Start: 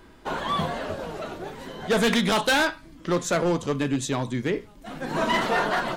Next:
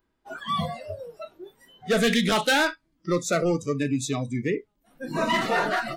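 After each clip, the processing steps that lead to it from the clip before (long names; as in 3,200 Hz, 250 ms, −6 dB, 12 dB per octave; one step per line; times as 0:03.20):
noise reduction from a noise print of the clip's start 24 dB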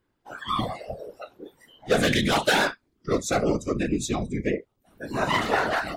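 random phases in short frames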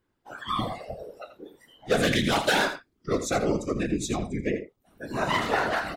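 single-tap delay 83 ms −11 dB
level −2 dB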